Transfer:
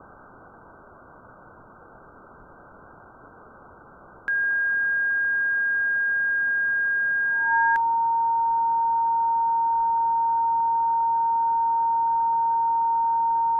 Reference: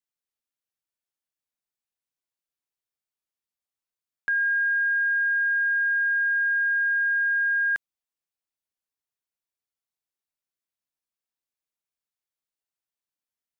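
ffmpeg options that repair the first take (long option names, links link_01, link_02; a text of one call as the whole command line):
ffmpeg -i in.wav -filter_complex "[0:a]bandreject=frequency=920:width=30,asplit=3[link_01][link_02][link_03];[link_01]afade=type=out:start_time=2.38:duration=0.02[link_04];[link_02]highpass=frequency=140:width=0.5412,highpass=frequency=140:width=1.3066,afade=type=in:start_time=2.38:duration=0.02,afade=type=out:start_time=2.5:duration=0.02[link_05];[link_03]afade=type=in:start_time=2.5:duration=0.02[link_06];[link_04][link_05][link_06]amix=inputs=3:normalize=0,asplit=3[link_07][link_08][link_09];[link_07]afade=type=out:start_time=9.77:duration=0.02[link_10];[link_08]highpass=frequency=140:width=0.5412,highpass=frequency=140:width=1.3066,afade=type=in:start_time=9.77:duration=0.02,afade=type=out:start_time=9.89:duration=0.02[link_11];[link_09]afade=type=in:start_time=9.89:duration=0.02[link_12];[link_10][link_11][link_12]amix=inputs=3:normalize=0,afwtdn=0.014,asetnsamples=nb_out_samples=441:pad=0,asendcmd='9.66 volume volume 11dB',volume=0dB" out.wav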